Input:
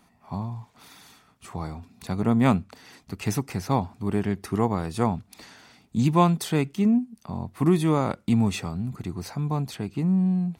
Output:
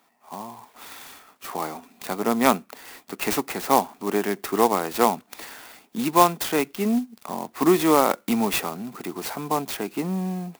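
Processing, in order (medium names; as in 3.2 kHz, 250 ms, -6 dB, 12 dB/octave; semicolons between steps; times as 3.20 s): Bessel high-pass 400 Hz, order 4; level rider gain up to 9.5 dB; sampling jitter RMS 0.045 ms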